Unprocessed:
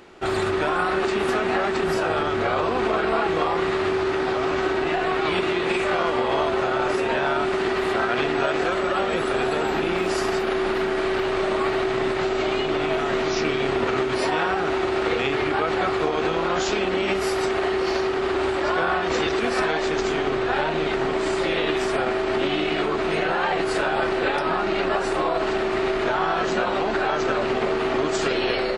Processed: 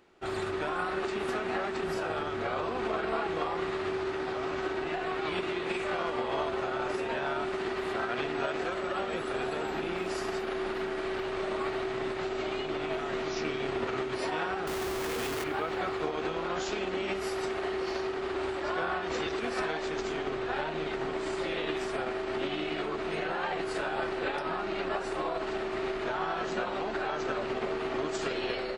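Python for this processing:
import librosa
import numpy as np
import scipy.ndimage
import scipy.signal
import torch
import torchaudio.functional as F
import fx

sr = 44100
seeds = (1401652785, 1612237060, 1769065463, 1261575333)

y = fx.schmitt(x, sr, flips_db=-31.5, at=(14.67, 15.44))
y = fx.rev_schroeder(y, sr, rt60_s=2.1, comb_ms=26, drr_db=17.0)
y = fx.upward_expand(y, sr, threshold_db=-33.0, expansion=1.5)
y = y * librosa.db_to_amplitude(-8.5)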